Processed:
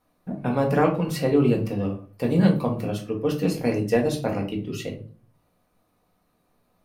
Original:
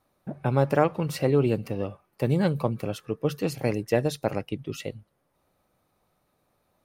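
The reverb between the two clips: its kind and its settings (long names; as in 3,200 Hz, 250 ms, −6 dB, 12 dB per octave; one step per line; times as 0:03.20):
rectangular room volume 250 cubic metres, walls furnished, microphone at 1.8 metres
level −1 dB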